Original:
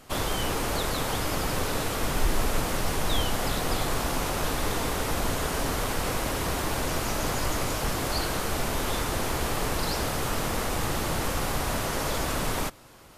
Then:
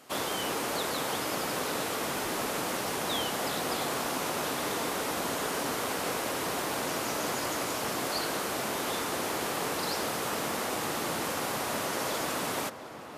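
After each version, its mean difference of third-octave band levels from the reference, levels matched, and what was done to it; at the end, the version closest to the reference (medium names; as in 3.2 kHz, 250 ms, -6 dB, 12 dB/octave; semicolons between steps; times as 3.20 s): 2.0 dB: high-pass 220 Hz 12 dB/octave; filtered feedback delay 708 ms, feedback 76%, low-pass 2.7 kHz, level -13.5 dB; trim -2 dB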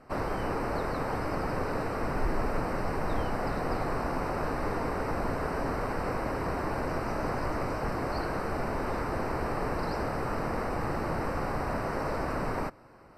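7.0 dB: boxcar filter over 13 samples; bass shelf 120 Hz -6 dB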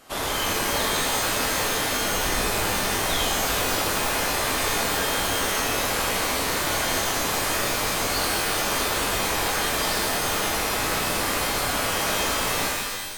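4.0 dB: bass shelf 190 Hz -11 dB; pitch-shifted reverb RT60 1.3 s, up +12 st, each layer -2 dB, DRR -1.5 dB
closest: first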